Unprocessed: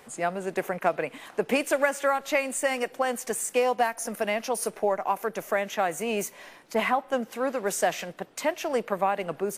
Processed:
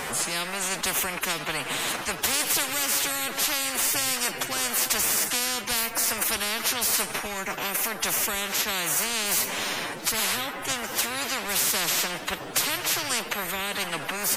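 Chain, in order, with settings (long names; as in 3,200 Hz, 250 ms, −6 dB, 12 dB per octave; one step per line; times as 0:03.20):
phase-vocoder stretch with locked phases 1.5×
every bin compressed towards the loudest bin 10 to 1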